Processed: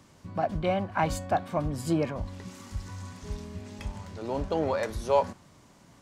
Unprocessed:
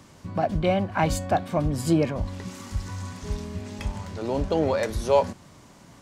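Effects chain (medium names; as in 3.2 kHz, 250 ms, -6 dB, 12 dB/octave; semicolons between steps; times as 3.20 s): dynamic bell 1.1 kHz, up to +5 dB, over -35 dBFS, Q 0.92; trim -6 dB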